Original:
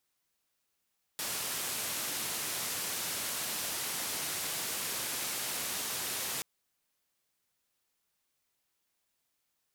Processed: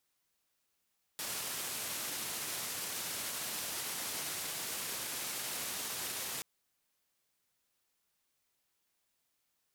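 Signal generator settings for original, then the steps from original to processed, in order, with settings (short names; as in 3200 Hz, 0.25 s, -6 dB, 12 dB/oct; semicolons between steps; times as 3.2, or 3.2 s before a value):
noise band 100–14000 Hz, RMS -36 dBFS 5.23 s
limiter -29.5 dBFS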